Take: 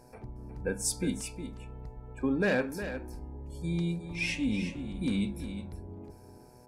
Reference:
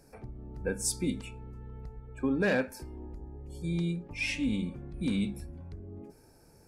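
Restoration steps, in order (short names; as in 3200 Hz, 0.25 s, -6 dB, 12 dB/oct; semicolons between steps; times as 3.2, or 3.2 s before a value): de-hum 123.1 Hz, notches 8; inverse comb 0.361 s -10 dB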